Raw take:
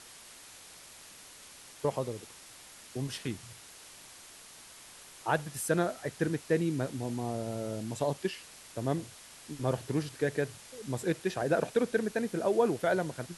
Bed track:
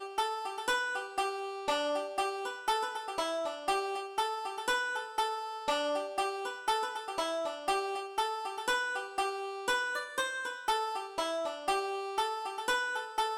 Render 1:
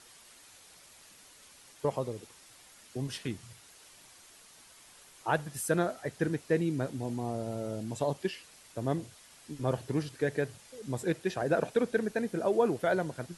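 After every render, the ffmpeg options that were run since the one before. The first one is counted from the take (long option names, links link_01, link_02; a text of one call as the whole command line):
ffmpeg -i in.wav -af "afftdn=noise_reduction=6:noise_floor=-52" out.wav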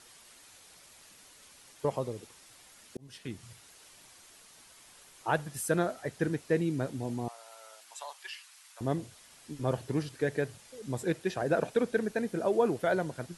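ffmpeg -i in.wav -filter_complex "[0:a]asettb=1/sr,asplit=3[link_01][link_02][link_03];[link_01]atrim=end=7.284[link_04];[link_02]atrim=start=7.28:end=8.81,asetpts=PTS-STARTPTS,afade=type=in:duration=0.004:curve=qsin,afade=type=out:start_time=1.526:duration=0.004:curve=qsin,highpass=frequency=950:width=0.5412,highpass=frequency=950:width=1.3066[link_05];[link_03]atrim=start=8.806[link_06];[link_04][link_05]acrossfade=duration=0.004:curve1=hsin:curve2=qsin[link_07];[link_07][link_06]acrossfade=duration=0.004:curve1=qsin:curve2=hsin,asplit=2[link_08][link_09];[link_08]atrim=end=2.97,asetpts=PTS-STARTPTS,afade=type=out:start_time=2.966:duration=0.004:curve=hsin[link_10];[link_09]atrim=start=2.97,asetpts=PTS-STARTPTS,afade=type=in:duration=0.51[link_11];[link_10][link_11]concat=n=2:v=0:a=1" out.wav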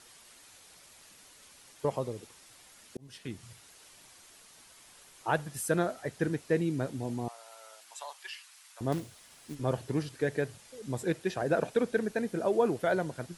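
ffmpeg -i in.wav -filter_complex "[0:a]asettb=1/sr,asplit=3[link_01][link_02][link_03];[link_01]atrim=end=8.924[link_04];[link_02]atrim=start=8.92:end=9.55,asetpts=PTS-STARTPTS,afade=type=in:duration=0.004:curve=qsin,afade=type=out:start_time=0.626:duration=0.004:curve=qsin,acrusher=bits=3:mode=log:mix=0:aa=0.000001[link_05];[link_03]atrim=start=9.546[link_06];[link_04][link_05]acrossfade=duration=0.004:curve1=hsin:curve2=qsin[link_07];[link_07][link_06]acrossfade=duration=0.004:curve1=qsin:curve2=hsin" out.wav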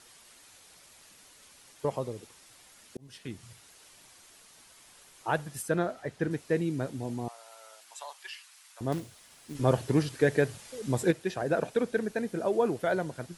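ffmpeg -i in.wav -filter_complex "[0:a]asettb=1/sr,asplit=3[link_01][link_02][link_03];[link_01]atrim=end=5.624[link_04];[link_02]atrim=start=5.62:end=6.31,asetpts=PTS-STARTPTS,afade=type=in:duration=0.004:curve=qsin,afade=type=out:start_time=0.686:duration=0.004:curve=qsin,highshelf=frequency=6300:gain=-10[link_05];[link_03]atrim=start=6.306[link_06];[link_04][link_05]acrossfade=duration=0.004:curve1=hsin:curve2=qsin[link_07];[link_07][link_06]acrossfade=duration=0.004:curve1=qsin:curve2=hsin,asplit=3[link_08][link_09][link_10];[link_08]atrim=end=9.552[link_11];[link_09]atrim=start=9.548:end=11.112,asetpts=PTS-STARTPTS,volume=6dB[link_12];[link_10]atrim=start=11.108[link_13];[link_11][link_12]acrossfade=duration=0.004:curve1=hsin:curve2=hsin[link_14];[link_14][link_13]acrossfade=duration=0.004:curve1=hsin:curve2=hsin" out.wav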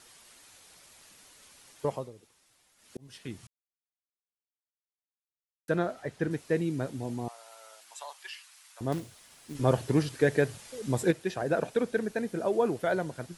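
ffmpeg -i in.wav -filter_complex "[0:a]asplit=5[link_01][link_02][link_03][link_04][link_05];[link_01]atrim=end=2.11,asetpts=PTS-STARTPTS,afade=type=out:start_time=1.91:duration=0.2:silence=0.281838[link_06];[link_02]atrim=start=2.11:end=2.77,asetpts=PTS-STARTPTS,volume=-11dB[link_07];[link_03]atrim=start=2.77:end=3.47,asetpts=PTS-STARTPTS,afade=type=in:duration=0.2:silence=0.281838,afade=type=out:start_time=0.696:duration=0.004:curve=hsin[link_08];[link_04]atrim=start=3.47:end=5.68,asetpts=PTS-STARTPTS,volume=0[link_09];[link_05]atrim=start=5.68,asetpts=PTS-STARTPTS,afade=type=in:duration=0.004:curve=hsin[link_10];[link_06][link_07][link_08][link_09][link_10]concat=n=5:v=0:a=1" out.wav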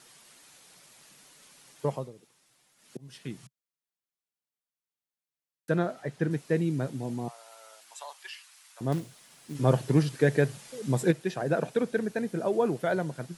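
ffmpeg -i in.wav -af "lowshelf=frequency=110:width_type=q:width=3:gain=-7" out.wav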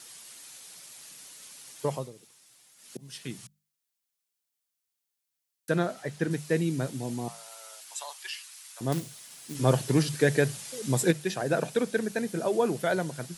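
ffmpeg -i in.wav -af "highshelf=frequency=2900:gain=10.5,bandreject=frequency=50:width_type=h:width=6,bandreject=frequency=100:width_type=h:width=6,bandreject=frequency=150:width_type=h:width=6,bandreject=frequency=200:width_type=h:width=6" out.wav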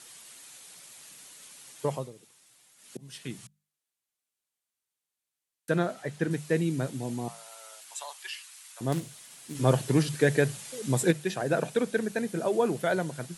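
ffmpeg -i in.wav -af "lowpass=12000,equalizer=frequency=5200:width_type=o:width=0.65:gain=-4" out.wav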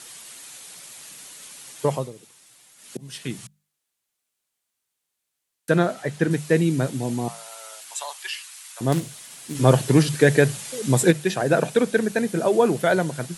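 ffmpeg -i in.wav -af "volume=7.5dB,alimiter=limit=-3dB:level=0:latency=1" out.wav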